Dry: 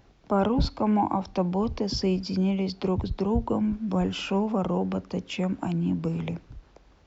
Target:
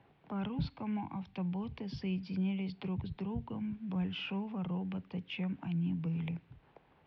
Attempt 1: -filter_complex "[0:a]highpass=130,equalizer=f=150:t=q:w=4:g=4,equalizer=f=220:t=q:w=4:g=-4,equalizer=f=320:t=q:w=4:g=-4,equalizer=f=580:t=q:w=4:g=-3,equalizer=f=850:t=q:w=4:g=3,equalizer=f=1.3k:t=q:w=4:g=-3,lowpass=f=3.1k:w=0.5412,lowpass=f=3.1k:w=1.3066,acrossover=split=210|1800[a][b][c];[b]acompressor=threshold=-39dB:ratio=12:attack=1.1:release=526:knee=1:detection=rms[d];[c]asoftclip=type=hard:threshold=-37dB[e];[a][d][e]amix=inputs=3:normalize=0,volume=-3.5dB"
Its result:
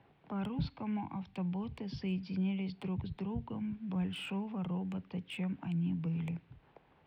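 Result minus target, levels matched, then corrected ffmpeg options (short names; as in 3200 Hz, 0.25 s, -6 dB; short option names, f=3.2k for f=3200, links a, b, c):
hard clip: distortion +39 dB
-filter_complex "[0:a]highpass=130,equalizer=f=150:t=q:w=4:g=4,equalizer=f=220:t=q:w=4:g=-4,equalizer=f=320:t=q:w=4:g=-4,equalizer=f=580:t=q:w=4:g=-3,equalizer=f=850:t=q:w=4:g=3,equalizer=f=1.3k:t=q:w=4:g=-3,lowpass=f=3.1k:w=0.5412,lowpass=f=3.1k:w=1.3066,acrossover=split=210|1800[a][b][c];[b]acompressor=threshold=-39dB:ratio=12:attack=1.1:release=526:knee=1:detection=rms[d];[c]asoftclip=type=hard:threshold=-26.5dB[e];[a][d][e]amix=inputs=3:normalize=0,volume=-3.5dB"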